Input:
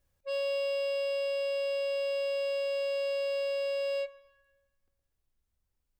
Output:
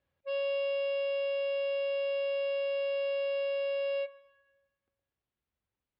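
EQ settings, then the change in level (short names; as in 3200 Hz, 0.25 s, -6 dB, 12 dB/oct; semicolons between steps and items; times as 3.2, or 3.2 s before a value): HPF 73 Hz 12 dB/oct; LPF 3600 Hz 24 dB/oct; low shelf 100 Hz -8 dB; 0.0 dB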